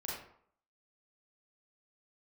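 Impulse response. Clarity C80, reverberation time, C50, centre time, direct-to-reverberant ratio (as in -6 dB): 5.0 dB, 0.60 s, 0.0 dB, 58 ms, -5.5 dB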